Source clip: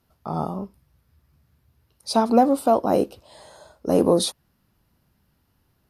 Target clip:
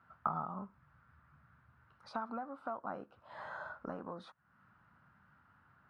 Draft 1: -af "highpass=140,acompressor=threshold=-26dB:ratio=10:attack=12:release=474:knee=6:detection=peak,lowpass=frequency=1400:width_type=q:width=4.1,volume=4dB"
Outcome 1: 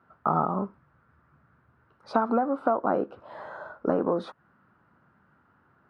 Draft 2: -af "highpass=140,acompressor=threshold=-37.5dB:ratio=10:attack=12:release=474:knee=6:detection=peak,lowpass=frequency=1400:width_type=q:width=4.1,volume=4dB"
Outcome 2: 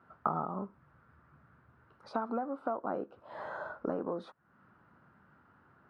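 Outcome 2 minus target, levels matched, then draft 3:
500 Hz band +3.5 dB
-af "highpass=140,acompressor=threshold=-37.5dB:ratio=10:attack=12:release=474:knee=6:detection=peak,lowpass=frequency=1400:width_type=q:width=4.1,equalizer=frequency=390:width=0.86:gain=-13.5,volume=4dB"

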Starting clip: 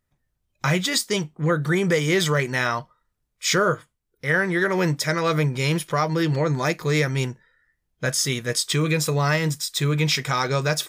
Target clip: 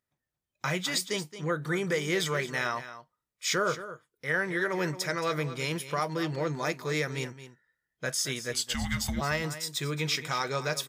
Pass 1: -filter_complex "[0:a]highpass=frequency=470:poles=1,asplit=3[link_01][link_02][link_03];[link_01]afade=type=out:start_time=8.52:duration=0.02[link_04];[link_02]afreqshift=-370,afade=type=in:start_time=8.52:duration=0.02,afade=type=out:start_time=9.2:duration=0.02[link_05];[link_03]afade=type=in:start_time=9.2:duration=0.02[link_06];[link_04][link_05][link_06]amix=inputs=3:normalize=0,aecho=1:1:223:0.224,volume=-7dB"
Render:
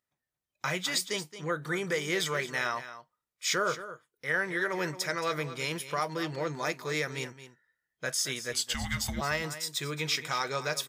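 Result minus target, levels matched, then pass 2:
250 Hz band −3.0 dB
-filter_complex "[0:a]highpass=frequency=230:poles=1,asplit=3[link_01][link_02][link_03];[link_01]afade=type=out:start_time=8.52:duration=0.02[link_04];[link_02]afreqshift=-370,afade=type=in:start_time=8.52:duration=0.02,afade=type=out:start_time=9.2:duration=0.02[link_05];[link_03]afade=type=in:start_time=9.2:duration=0.02[link_06];[link_04][link_05][link_06]amix=inputs=3:normalize=0,aecho=1:1:223:0.224,volume=-7dB"

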